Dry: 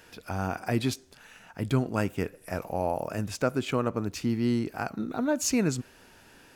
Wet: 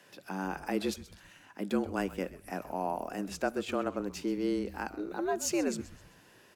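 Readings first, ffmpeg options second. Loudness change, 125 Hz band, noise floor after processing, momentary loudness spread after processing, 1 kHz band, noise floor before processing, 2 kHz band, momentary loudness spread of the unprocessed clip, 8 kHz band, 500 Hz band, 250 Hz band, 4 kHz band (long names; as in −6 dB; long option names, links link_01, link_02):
−4.5 dB, −14.5 dB, −60 dBFS, 10 LU, −2.5 dB, −56 dBFS, −3.5 dB, 10 LU, −5.0 dB, −3.5 dB, −4.5 dB, −5.0 dB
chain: -filter_complex "[0:a]afreqshift=94,asplit=5[link_01][link_02][link_03][link_04][link_05];[link_02]adelay=129,afreqshift=-130,volume=-16dB[link_06];[link_03]adelay=258,afreqshift=-260,volume=-23.5dB[link_07];[link_04]adelay=387,afreqshift=-390,volume=-31.1dB[link_08];[link_05]adelay=516,afreqshift=-520,volume=-38.6dB[link_09];[link_01][link_06][link_07][link_08][link_09]amix=inputs=5:normalize=0,volume=-5dB"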